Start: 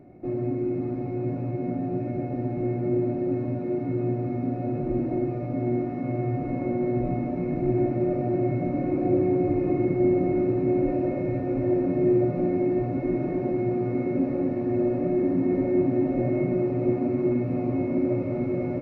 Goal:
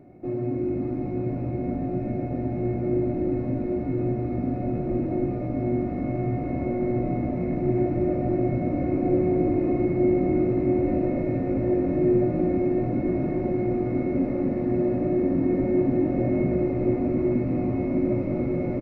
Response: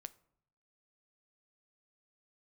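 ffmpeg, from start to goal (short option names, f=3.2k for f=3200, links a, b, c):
-filter_complex "[0:a]asplit=9[a][b][c][d][e][f][g][h][i];[b]adelay=281,afreqshift=-50,volume=-9dB[j];[c]adelay=562,afreqshift=-100,volume=-13dB[k];[d]adelay=843,afreqshift=-150,volume=-17dB[l];[e]adelay=1124,afreqshift=-200,volume=-21dB[m];[f]adelay=1405,afreqshift=-250,volume=-25.1dB[n];[g]adelay=1686,afreqshift=-300,volume=-29.1dB[o];[h]adelay=1967,afreqshift=-350,volume=-33.1dB[p];[i]adelay=2248,afreqshift=-400,volume=-37.1dB[q];[a][j][k][l][m][n][o][p][q]amix=inputs=9:normalize=0"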